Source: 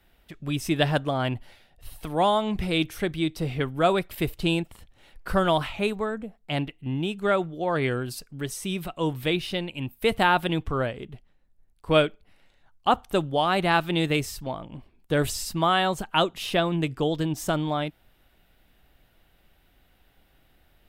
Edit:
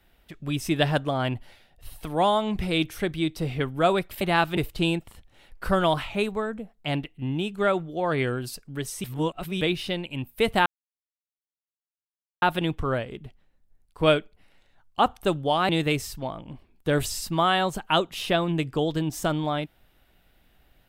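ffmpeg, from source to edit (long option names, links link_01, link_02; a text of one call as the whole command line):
ffmpeg -i in.wav -filter_complex "[0:a]asplit=7[link_01][link_02][link_03][link_04][link_05][link_06][link_07];[link_01]atrim=end=4.212[link_08];[link_02]atrim=start=13.568:end=13.932[link_09];[link_03]atrim=start=4.208:end=8.682[link_10];[link_04]atrim=start=8.678:end=9.252,asetpts=PTS-STARTPTS,areverse[link_11];[link_05]atrim=start=9.248:end=10.3,asetpts=PTS-STARTPTS,afade=type=out:start_time=1.048:duration=0.004:curve=hsin,apad=pad_dur=1.76[link_12];[link_06]atrim=start=10.3:end=13.572,asetpts=PTS-STARTPTS,afade=type=in:duration=0.004:curve=hsin[link_13];[link_07]atrim=start=13.928[link_14];[link_08][link_09]acrossfade=duration=0.004:curve1=hsin:curve2=hsin[link_15];[link_15][link_10]acrossfade=duration=0.004:curve1=hsin:curve2=hsin[link_16];[link_16][link_11]acrossfade=duration=0.004:curve1=hsin:curve2=hsin[link_17];[link_12][link_13]concat=n=2:v=0:a=1[link_18];[link_17][link_18]acrossfade=duration=0.004:curve1=hsin:curve2=hsin[link_19];[link_19][link_14]acrossfade=duration=0.004:curve1=hsin:curve2=hsin" out.wav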